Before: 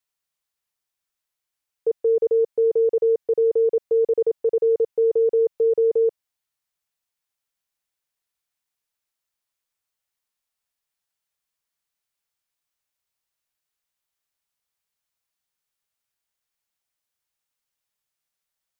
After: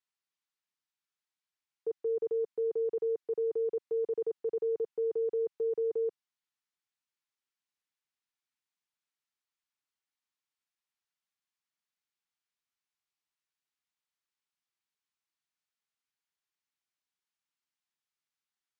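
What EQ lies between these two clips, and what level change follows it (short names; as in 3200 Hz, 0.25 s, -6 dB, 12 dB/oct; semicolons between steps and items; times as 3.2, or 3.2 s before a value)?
HPF 160 Hz 12 dB/oct; air absorption 65 m; bell 550 Hz -13.5 dB 0.58 oct; -5.0 dB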